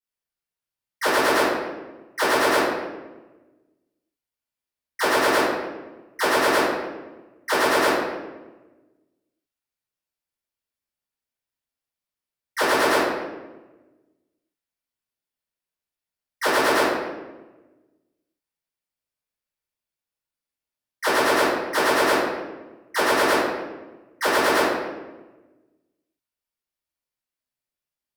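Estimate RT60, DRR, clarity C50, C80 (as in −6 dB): 1.2 s, −17.0 dB, −1.0 dB, 2.0 dB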